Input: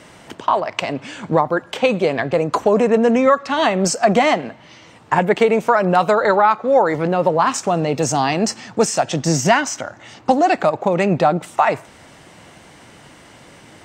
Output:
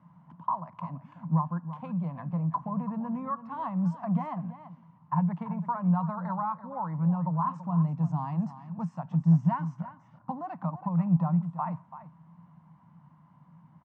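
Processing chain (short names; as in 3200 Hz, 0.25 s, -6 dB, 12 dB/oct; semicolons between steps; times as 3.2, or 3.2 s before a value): double band-pass 410 Hz, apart 2.6 oct; tilt shelf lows +8.5 dB, about 690 Hz; on a send: echo 0.334 s -13 dB; on the sum: gain -6 dB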